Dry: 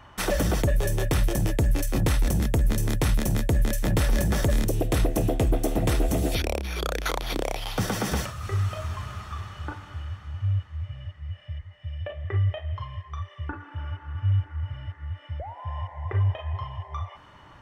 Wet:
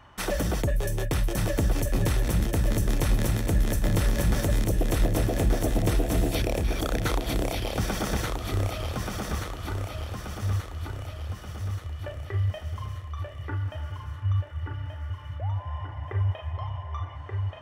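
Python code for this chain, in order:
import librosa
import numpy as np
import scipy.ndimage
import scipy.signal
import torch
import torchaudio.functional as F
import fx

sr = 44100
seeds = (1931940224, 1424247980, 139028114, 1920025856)

y = fx.echo_feedback(x, sr, ms=1180, feedback_pct=52, wet_db=-4)
y = F.gain(torch.from_numpy(y), -3.0).numpy()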